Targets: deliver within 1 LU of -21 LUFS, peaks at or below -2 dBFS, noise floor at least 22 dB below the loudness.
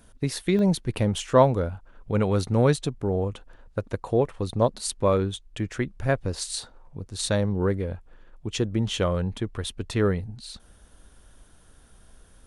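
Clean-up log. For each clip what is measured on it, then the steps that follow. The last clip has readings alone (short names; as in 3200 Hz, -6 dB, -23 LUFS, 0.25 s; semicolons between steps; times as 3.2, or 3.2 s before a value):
dropouts 2; longest dropout 1.1 ms; loudness -26.0 LUFS; peak -6.0 dBFS; loudness target -21.0 LUFS
-> interpolate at 0.59/7.26, 1.1 ms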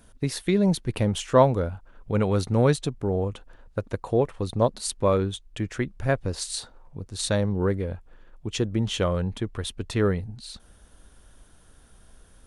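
dropouts 0; loudness -26.0 LUFS; peak -6.0 dBFS; loudness target -21.0 LUFS
-> gain +5 dB; limiter -2 dBFS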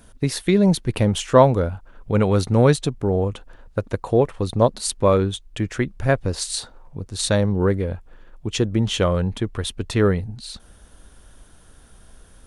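loudness -21.0 LUFS; peak -2.0 dBFS; noise floor -49 dBFS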